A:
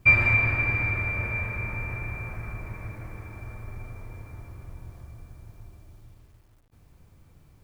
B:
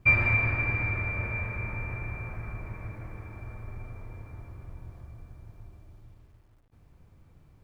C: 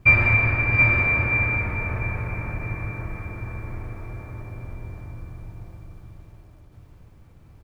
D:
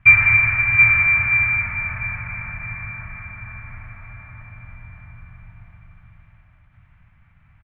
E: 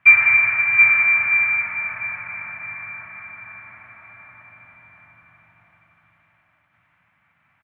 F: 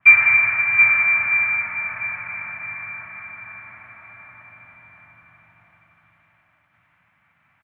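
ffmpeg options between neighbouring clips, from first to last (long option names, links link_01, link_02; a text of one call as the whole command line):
ffmpeg -i in.wav -af "highshelf=frequency=4000:gain=-9.5,volume=-1.5dB" out.wav
ffmpeg -i in.wav -af "aecho=1:1:665|726:0.335|0.562,volume=6dB" out.wav
ffmpeg -i in.wav -af "firequalizer=gain_entry='entry(180,0);entry(400,-25);entry(640,-4);entry(1400,9);entry(2100,13);entry(4600,-15)':delay=0.05:min_phase=1,volume=-4.5dB" out.wav
ffmpeg -i in.wav -af "highpass=330" out.wav
ffmpeg -i in.wav -af "adynamicequalizer=threshold=0.0398:dfrequency=2400:dqfactor=0.7:tfrequency=2400:tqfactor=0.7:attack=5:release=100:ratio=0.375:range=2.5:mode=cutabove:tftype=highshelf,volume=1dB" out.wav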